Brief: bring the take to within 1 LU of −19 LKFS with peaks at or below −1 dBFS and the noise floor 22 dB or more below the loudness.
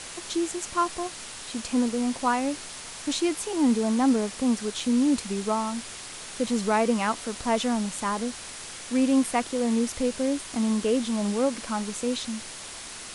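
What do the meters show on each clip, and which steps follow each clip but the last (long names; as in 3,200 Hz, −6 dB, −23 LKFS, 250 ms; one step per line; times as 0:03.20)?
number of dropouts 2; longest dropout 3.1 ms; background noise floor −40 dBFS; target noise floor −49 dBFS; integrated loudness −26.5 LKFS; sample peak −12.0 dBFS; target loudness −19.0 LKFS
→ repair the gap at 0:04.80/0:09.24, 3.1 ms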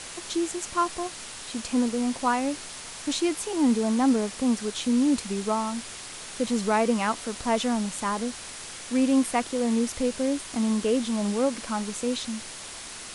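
number of dropouts 0; background noise floor −40 dBFS; target noise floor −49 dBFS
→ broadband denoise 9 dB, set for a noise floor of −40 dBFS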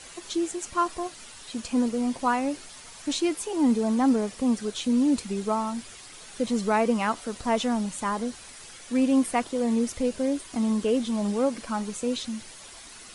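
background noise floor −46 dBFS; target noise floor −49 dBFS
→ broadband denoise 6 dB, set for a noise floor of −46 dBFS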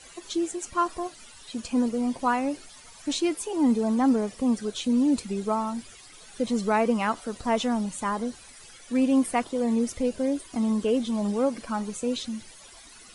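background noise floor −49 dBFS; integrated loudness −27.0 LKFS; sample peak −12.0 dBFS; target loudness −19.0 LKFS
→ level +8 dB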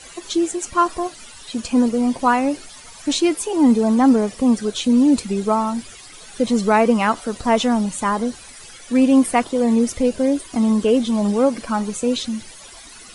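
integrated loudness −19.0 LKFS; sample peak −4.0 dBFS; background noise floor −41 dBFS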